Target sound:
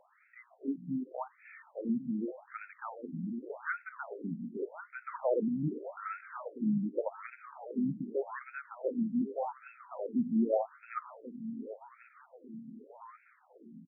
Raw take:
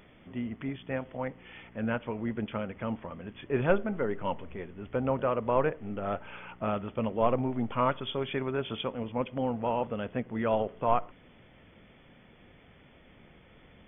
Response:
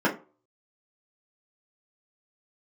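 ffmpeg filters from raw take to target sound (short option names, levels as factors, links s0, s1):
-filter_complex "[0:a]asettb=1/sr,asplit=3[s0][s1][s2];[s0]atrim=end=5.104[s3];[s1]atrim=start=5.1:end=6.21,asetpts=PTS-STARTPTS,afade=t=in:d=0.004:c=qsin,afade=t=out:st=1.106:d=0.004:c=qsin,aeval=exprs='val(0)+0.5*0.0168*sgn(val(0))':c=same[s4];[s2]atrim=start=6.206[s5];[s3][s4]acrossfade=d=0.004:c1=hsin:c2=qsin[s6];[s6][s5]acrossfade=d=0.004:c1=qsin:c2=hsin,equalizer=f=65:t=o:w=2.7:g=7,asoftclip=type=hard:threshold=0.178,bass=f=250:g=7,treble=f=4000:g=-14,asplit=2[s7][s8];[s8]aecho=0:1:1087|2174|3261|4348|5435:0.251|0.123|0.0603|0.0296|0.0145[s9];[s7][s9]amix=inputs=2:normalize=0,afftfilt=real='re*between(b*sr/1024,210*pow(1900/210,0.5+0.5*sin(2*PI*0.85*pts/sr))/1.41,210*pow(1900/210,0.5+0.5*sin(2*PI*0.85*pts/sr))*1.41)':imag='im*between(b*sr/1024,210*pow(1900/210,0.5+0.5*sin(2*PI*0.85*pts/sr))/1.41,210*pow(1900/210,0.5+0.5*sin(2*PI*0.85*pts/sr))*1.41)':win_size=1024:overlap=0.75"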